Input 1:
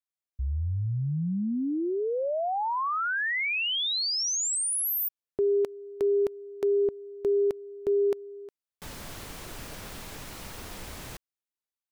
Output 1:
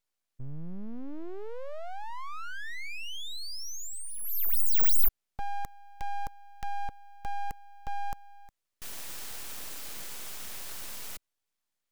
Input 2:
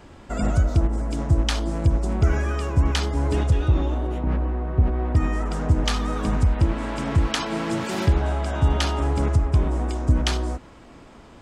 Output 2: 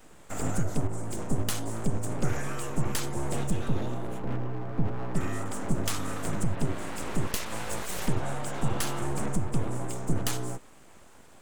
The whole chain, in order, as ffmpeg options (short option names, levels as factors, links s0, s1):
-filter_complex "[0:a]acrossover=split=120|1000[s0][s1][s2];[s2]aexciter=amount=4.7:drive=5.6:freq=6800[s3];[s0][s1][s3]amix=inputs=3:normalize=0,aeval=exprs='abs(val(0))':c=same,volume=0.531"